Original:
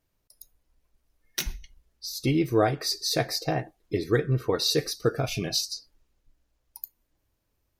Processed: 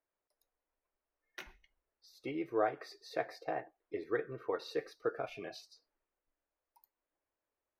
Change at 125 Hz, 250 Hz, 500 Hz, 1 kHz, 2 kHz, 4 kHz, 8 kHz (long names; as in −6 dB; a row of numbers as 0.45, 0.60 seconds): −26.5 dB, −15.0 dB, −9.5 dB, −7.5 dB, −9.5 dB, −24.0 dB, below −25 dB